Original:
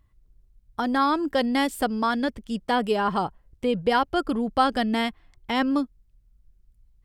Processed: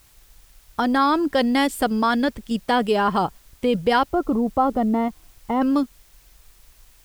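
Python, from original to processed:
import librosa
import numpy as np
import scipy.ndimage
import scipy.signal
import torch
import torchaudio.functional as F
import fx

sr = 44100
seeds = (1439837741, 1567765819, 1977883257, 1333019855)

p1 = fx.level_steps(x, sr, step_db=14)
p2 = x + (p1 * librosa.db_to_amplitude(0.5))
p3 = fx.savgol(p2, sr, points=65, at=(4.05, 5.61), fade=0.02)
y = fx.dmg_noise_colour(p3, sr, seeds[0], colour='white', level_db=-56.0)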